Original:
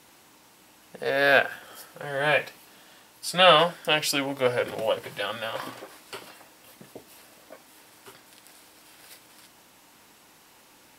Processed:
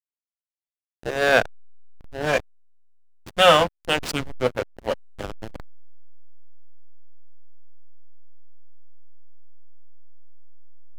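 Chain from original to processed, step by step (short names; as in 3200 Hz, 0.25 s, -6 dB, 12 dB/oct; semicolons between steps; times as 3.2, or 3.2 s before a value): backlash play -17.5 dBFS; gain +3 dB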